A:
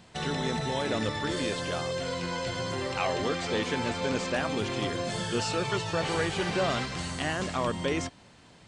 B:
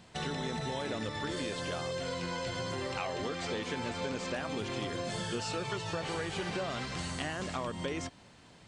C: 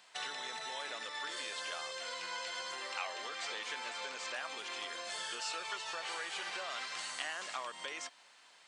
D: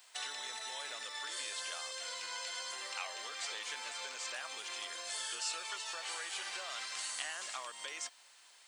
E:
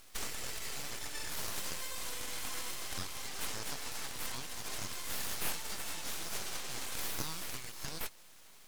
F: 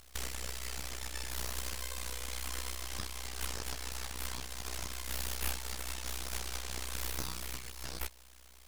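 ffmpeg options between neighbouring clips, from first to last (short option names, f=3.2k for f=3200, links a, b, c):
-af "acompressor=threshold=-30dB:ratio=6,volume=-2dB"
-af "highpass=990"
-af "aemphasis=mode=production:type=bsi,volume=-3.5dB"
-filter_complex "[0:a]acrossover=split=1800[a][b];[a]alimiter=level_in=19dB:limit=-24dB:level=0:latency=1:release=378,volume=-19dB[c];[c][b]amix=inputs=2:normalize=0,aeval=exprs='abs(val(0))':c=same,volume=5.5dB"
-af "tremolo=f=63:d=0.919,volume=3.5dB"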